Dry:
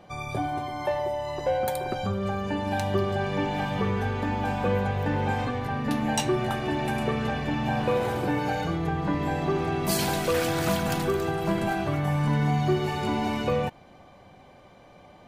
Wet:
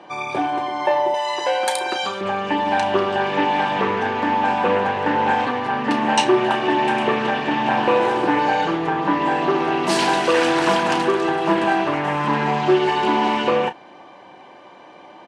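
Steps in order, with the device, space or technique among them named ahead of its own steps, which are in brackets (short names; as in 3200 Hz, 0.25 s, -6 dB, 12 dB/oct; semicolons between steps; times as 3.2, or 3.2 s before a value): HPF 55 Hz; 1.14–2.21 tilt +4 dB/oct; full-range speaker at full volume (Doppler distortion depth 0.23 ms; speaker cabinet 260–8500 Hz, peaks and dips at 330 Hz +8 dB, 950 Hz +10 dB, 1700 Hz +6 dB, 2800 Hz +6 dB, 7100 Hz -3 dB); doubler 32 ms -11 dB; gain +5.5 dB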